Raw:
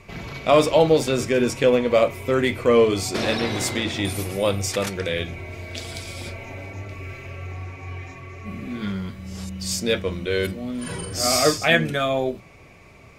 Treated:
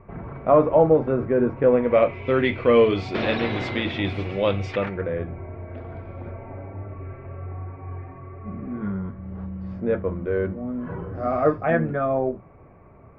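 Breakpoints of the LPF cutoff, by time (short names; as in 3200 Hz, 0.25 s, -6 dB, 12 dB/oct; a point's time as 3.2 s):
LPF 24 dB/oct
1.6 s 1400 Hz
2.28 s 3300 Hz
4.67 s 3300 Hz
5.09 s 1400 Hz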